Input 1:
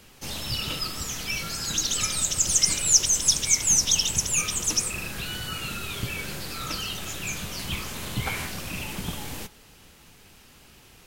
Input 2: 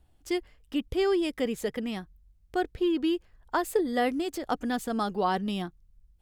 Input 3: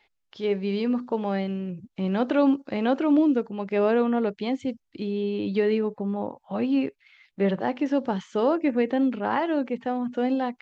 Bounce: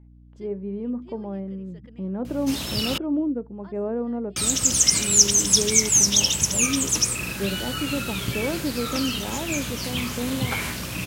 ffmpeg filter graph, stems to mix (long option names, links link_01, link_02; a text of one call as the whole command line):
ffmpeg -i stem1.wav -i stem2.wav -i stem3.wav -filter_complex "[0:a]aeval=exprs='val(0)+0.0141*(sin(2*PI*60*n/s)+sin(2*PI*2*60*n/s)/2+sin(2*PI*3*60*n/s)/3+sin(2*PI*4*60*n/s)/4+sin(2*PI*5*60*n/s)/5)':channel_layout=same,adelay=2250,volume=3dB,asplit=3[link_01][link_02][link_03];[link_01]atrim=end=2.98,asetpts=PTS-STARTPTS,afade=type=out:start_time=2.976:duration=0.004:curve=hsin[link_04];[link_02]atrim=start=2.98:end=4.36,asetpts=PTS-STARTPTS,volume=0[link_05];[link_03]atrim=start=4.36,asetpts=PTS-STARTPTS,afade=type=in:duration=0.004:curve=hsin[link_06];[link_04][link_05][link_06]concat=n=3:v=0:a=1[link_07];[1:a]lowpass=5300,adelay=100,volume=-16.5dB[link_08];[2:a]lowpass=1200,tiltshelf=frequency=650:gain=4.5,volume=-7dB,asplit=2[link_09][link_10];[link_10]apad=whole_len=278383[link_11];[link_08][link_11]sidechaincompress=threshold=-40dB:ratio=5:attack=20:release=183[link_12];[link_07][link_12][link_09]amix=inputs=3:normalize=0,highpass=74,bandreject=frequency=760:width=16,aeval=exprs='val(0)+0.00398*(sin(2*PI*60*n/s)+sin(2*PI*2*60*n/s)/2+sin(2*PI*3*60*n/s)/3+sin(2*PI*4*60*n/s)/4+sin(2*PI*5*60*n/s)/5)':channel_layout=same" out.wav